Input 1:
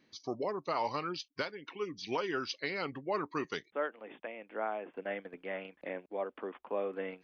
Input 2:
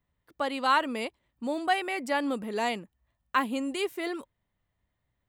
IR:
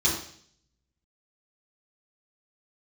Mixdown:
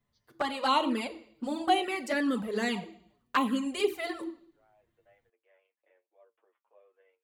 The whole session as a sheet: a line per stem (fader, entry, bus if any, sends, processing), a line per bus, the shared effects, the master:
-20.0 dB, 0.00 s, no send, high-pass 410 Hz 24 dB/octave; flange 0.96 Hz, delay 8.5 ms, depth 1.2 ms, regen +66%; auto duck -17 dB, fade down 0.20 s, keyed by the second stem
+3.0 dB, 0.00 s, send -19.5 dB, none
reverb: on, RT60 0.55 s, pre-delay 3 ms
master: touch-sensitive flanger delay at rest 8.8 ms, full sweep at -19.5 dBFS

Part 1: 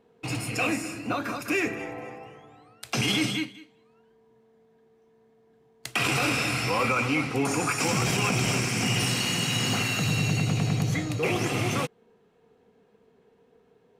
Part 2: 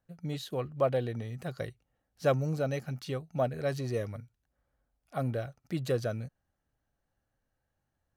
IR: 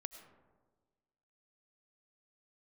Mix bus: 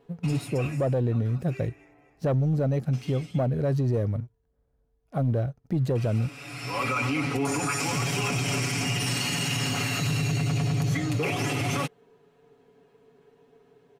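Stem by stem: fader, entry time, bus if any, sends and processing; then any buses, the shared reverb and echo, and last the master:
+0.5 dB, 0.00 s, no send, comb 7.1 ms, depth 79%; auto duck -23 dB, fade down 1.10 s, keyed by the second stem
+1.0 dB, 0.00 s, no send, tilt shelf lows +9 dB, about 700 Hz; waveshaping leveller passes 1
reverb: none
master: peak limiter -18.5 dBFS, peak gain reduction 8 dB

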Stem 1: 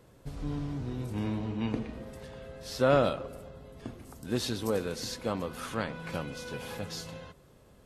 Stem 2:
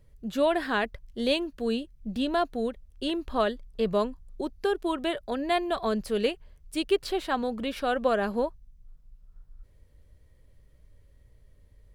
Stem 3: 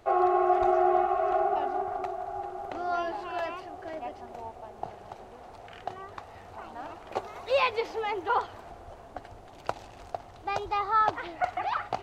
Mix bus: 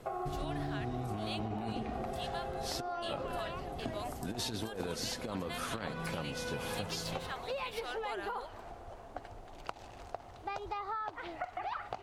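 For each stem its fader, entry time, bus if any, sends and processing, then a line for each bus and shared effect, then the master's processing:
+1.5 dB, 0.00 s, no send, compressor with a negative ratio -34 dBFS, ratio -0.5
-3.5 dB, 0.00 s, no send, amplifier tone stack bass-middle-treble 10-0-10
-2.5 dB, 0.00 s, no send, compression, threshold -31 dBFS, peak gain reduction 11.5 dB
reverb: none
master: compression, threshold -34 dBFS, peak gain reduction 8.5 dB

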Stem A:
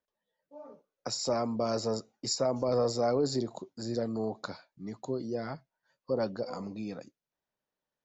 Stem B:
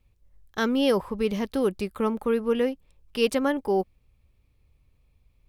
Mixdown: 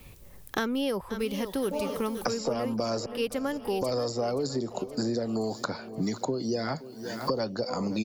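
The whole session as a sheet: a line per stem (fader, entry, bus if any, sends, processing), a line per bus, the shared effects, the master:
+2.0 dB, 1.20 s, muted 3.06–3.81 s, no send, echo send -21 dB, three bands compressed up and down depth 70%
-8.0 dB, 0.00 s, no send, echo send -12.5 dB, none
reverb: none
echo: feedback delay 523 ms, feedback 54%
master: treble shelf 8.4 kHz +9.5 dB; three bands compressed up and down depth 100%

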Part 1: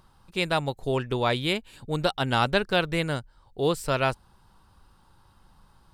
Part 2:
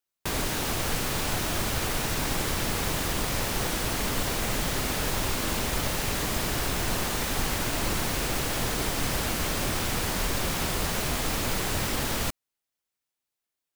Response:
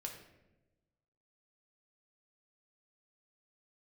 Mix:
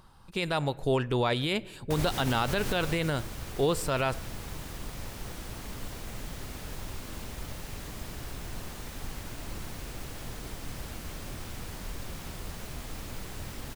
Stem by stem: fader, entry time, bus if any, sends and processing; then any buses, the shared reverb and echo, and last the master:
+1.5 dB, 0.00 s, send -15.5 dB, none
2.73 s -7 dB -> 3.15 s -15 dB, 1.65 s, no send, bass shelf 190 Hz +8 dB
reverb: on, RT60 1.0 s, pre-delay 4 ms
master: peak limiter -17 dBFS, peak gain reduction 11 dB

